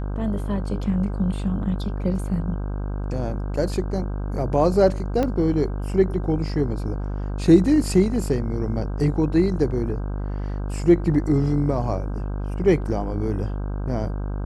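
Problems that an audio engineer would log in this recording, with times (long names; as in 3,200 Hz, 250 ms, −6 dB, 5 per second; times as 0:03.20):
mains buzz 50 Hz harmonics 32 −27 dBFS
0:05.23: click −12 dBFS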